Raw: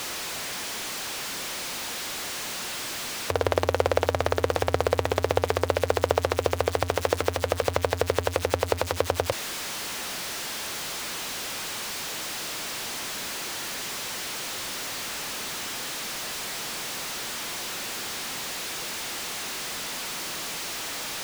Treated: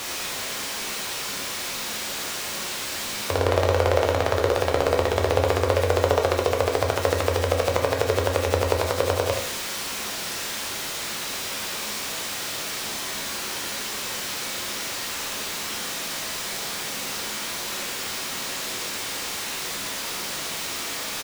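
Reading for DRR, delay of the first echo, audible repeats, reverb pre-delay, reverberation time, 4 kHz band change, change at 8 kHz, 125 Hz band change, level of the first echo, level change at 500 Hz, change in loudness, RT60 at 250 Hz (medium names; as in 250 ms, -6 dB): 0.5 dB, 76 ms, 1, 5 ms, 0.60 s, +3.0 dB, +3.0 dB, +4.5 dB, -8.5 dB, +3.5 dB, +3.0 dB, 0.60 s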